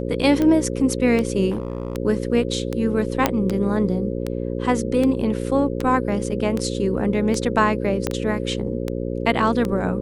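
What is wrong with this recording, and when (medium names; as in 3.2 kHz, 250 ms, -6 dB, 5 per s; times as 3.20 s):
buzz 60 Hz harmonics 9 -26 dBFS
tick 78 rpm -11 dBFS
1.50–1.97 s: clipped -20.5 dBFS
3.26 s: pop -2 dBFS
8.07 s: pop -8 dBFS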